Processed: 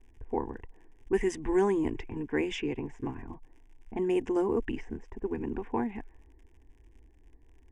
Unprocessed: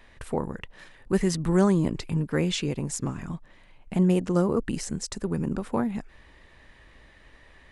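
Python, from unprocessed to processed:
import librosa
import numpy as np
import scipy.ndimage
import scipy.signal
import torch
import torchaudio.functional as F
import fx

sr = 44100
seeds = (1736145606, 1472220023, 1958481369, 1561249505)

y = fx.env_lowpass(x, sr, base_hz=310.0, full_db=-20.0)
y = fx.dmg_crackle(y, sr, seeds[0], per_s=72.0, level_db=-46.0)
y = scipy.signal.sosfilt(scipy.signal.butter(2, 6100.0, 'lowpass', fs=sr, output='sos'), y)
y = fx.fixed_phaser(y, sr, hz=860.0, stages=8)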